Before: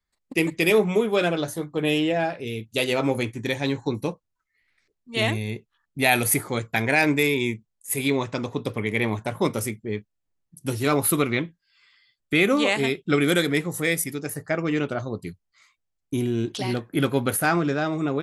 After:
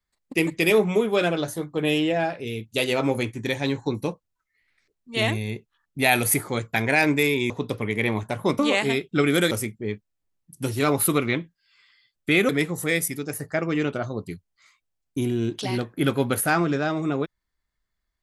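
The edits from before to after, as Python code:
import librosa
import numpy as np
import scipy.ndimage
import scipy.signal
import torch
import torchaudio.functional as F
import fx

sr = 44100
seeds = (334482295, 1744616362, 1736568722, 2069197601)

y = fx.edit(x, sr, fx.cut(start_s=7.5, length_s=0.96),
    fx.move(start_s=12.53, length_s=0.92, to_s=9.55), tone=tone)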